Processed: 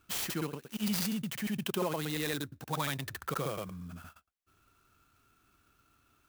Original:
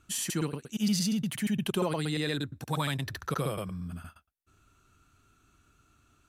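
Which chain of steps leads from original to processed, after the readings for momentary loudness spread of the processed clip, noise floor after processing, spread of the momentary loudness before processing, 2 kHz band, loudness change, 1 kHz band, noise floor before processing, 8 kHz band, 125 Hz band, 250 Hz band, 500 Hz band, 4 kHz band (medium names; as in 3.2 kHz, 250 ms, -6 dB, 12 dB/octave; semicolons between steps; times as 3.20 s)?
9 LU, -72 dBFS, 9 LU, -1.5 dB, -3.5 dB, -1.5 dB, -68 dBFS, -4.5 dB, -6.0 dB, -5.0 dB, -3.0 dB, -3.0 dB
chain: bass shelf 270 Hz -7 dB; sampling jitter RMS 0.037 ms; trim -1 dB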